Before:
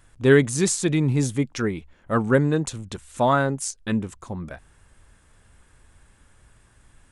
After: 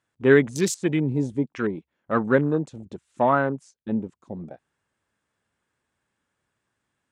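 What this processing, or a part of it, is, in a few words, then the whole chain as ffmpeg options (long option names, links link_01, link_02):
over-cleaned archive recording: -filter_complex "[0:a]highpass=170,lowpass=6900,afwtdn=0.02,asettb=1/sr,asplit=3[link_01][link_02][link_03];[link_01]atrim=end=3.304[link_04];[link_02]atrim=start=3.3:end=4.17,asetpts=PTS-STARTPTS,afade=type=in:duration=0.004:curve=qsin,afade=type=out:start_time=0.866:duration=0.004:curve=qsin,highshelf=frequency=4100:gain=-7[link_05];[link_03]atrim=start=4.166[link_06];[link_04][link_05]acrossfade=duration=0.004:curve1=hsin:curve2=qsin[link_07];[link_07][link_06]acrossfade=duration=0.004:curve1=qsin:curve2=hsin"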